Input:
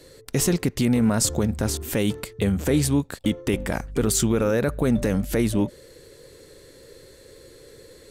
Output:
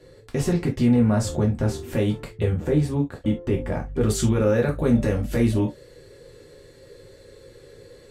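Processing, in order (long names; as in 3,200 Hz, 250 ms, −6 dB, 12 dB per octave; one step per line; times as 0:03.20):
low-pass filter 1,800 Hz 6 dB per octave, from 0:02.53 1,000 Hz, from 0:04.01 3,600 Hz
reverb whose tail is shaped and stops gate 90 ms falling, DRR −0.5 dB
level −3 dB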